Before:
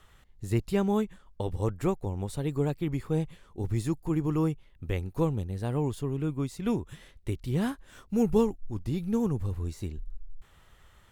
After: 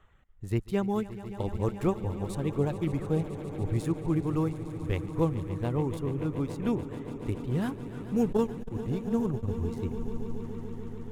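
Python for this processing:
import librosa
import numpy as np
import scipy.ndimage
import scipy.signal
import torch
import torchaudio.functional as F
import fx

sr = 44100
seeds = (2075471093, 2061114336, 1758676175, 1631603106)

y = fx.wiener(x, sr, points=9)
y = fx.dereverb_blind(y, sr, rt60_s=0.64)
y = fx.rider(y, sr, range_db=3, speed_s=2.0)
y = fx.echo_swell(y, sr, ms=143, loudest=5, wet_db=-15.5)
y = fx.transformer_sat(y, sr, knee_hz=240.0, at=(8.32, 9.48))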